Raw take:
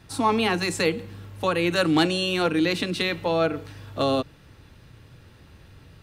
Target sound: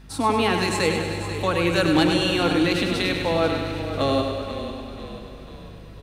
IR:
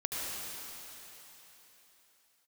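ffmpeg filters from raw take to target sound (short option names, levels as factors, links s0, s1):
-filter_complex "[0:a]asplit=2[s0][s1];[s1]aecho=0:1:100|200|300|400|500|600|700|800:0.501|0.291|0.169|0.0978|0.0567|0.0329|0.0191|0.0111[s2];[s0][s2]amix=inputs=2:normalize=0,aeval=exprs='val(0)+0.00631*(sin(2*PI*50*n/s)+sin(2*PI*2*50*n/s)/2+sin(2*PI*3*50*n/s)/3+sin(2*PI*4*50*n/s)/4+sin(2*PI*5*50*n/s)/5)':c=same,asplit=6[s3][s4][s5][s6][s7][s8];[s4]adelay=492,afreqshift=-30,volume=0.266[s9];[s5]adelay=984,afreqshift=-60,volume=0.136[s10];[s6]adelay=1476,afreqshift=-90,volume=0.0692[s11];[s7]adelay=1968,afreqshift=-120,volume=0.0355[s12];[s8]adelay=2460,afreqshift=-150,volume=0.018[s13];[s3][s9][s10][s11][s12][s13]amix=inputs=6:normalize=0,asplit=2[s14][s15];[1:a]atrim=start_sample=2205,adelay=140[s16];[s15][s16]afir=irnorm=-1:irlink=0,volume=0.15[s17];[s14][s17]amix=inputs=2:normalize=0"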